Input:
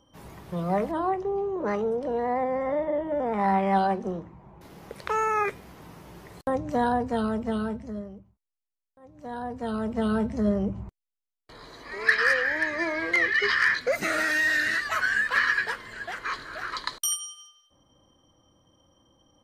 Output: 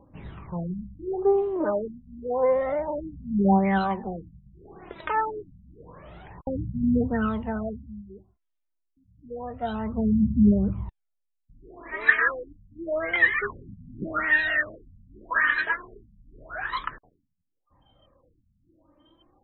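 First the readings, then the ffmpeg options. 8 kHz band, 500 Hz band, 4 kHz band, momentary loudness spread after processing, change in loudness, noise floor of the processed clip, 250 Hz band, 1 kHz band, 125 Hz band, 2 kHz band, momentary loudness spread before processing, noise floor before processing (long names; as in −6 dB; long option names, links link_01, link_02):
below −40 dB, +0.5 dB, −8.5 dB, 18 LU, +1.0 dB, −78 dBFS, +4.0 dB, −2.5 dB, +5.0 dB, −1.0 dB, 14 LU, below −85 dBFS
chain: -af "aphaser=in_gain=1:out_gain=1:delay=3.4:decay=0.67:speed=0.29:type=triangular,afftfilt=real='re*lt(b*sr/1024,230*pow(4100/230,0.5+0.5*sin(2*PI*0.85*pts/sr)))':imag='im*lt(b*sr/1024,230*pow(4100/230,0.5+0.5*sin(2*PI*0.85*pts/sr)))':win_size=1024:overlap=0.75"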